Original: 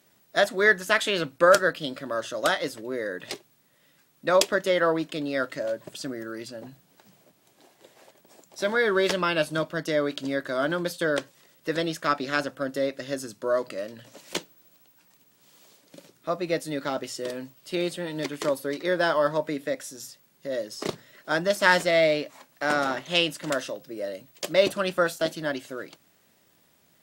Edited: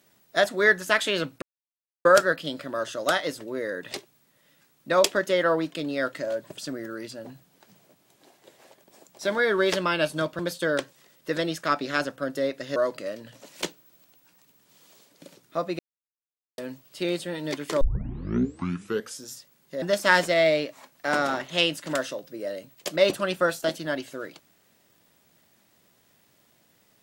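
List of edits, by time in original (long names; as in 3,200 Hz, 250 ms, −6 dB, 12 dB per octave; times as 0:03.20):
0:01.42: splice in silence 0.63 s
0:09.76–0:10.78: remove
0:13.15–0:13.48: remove
0:16.51–0:17.30: silence
0:18.53: tape start 1.47 s
0:20.54–0:21.39: remove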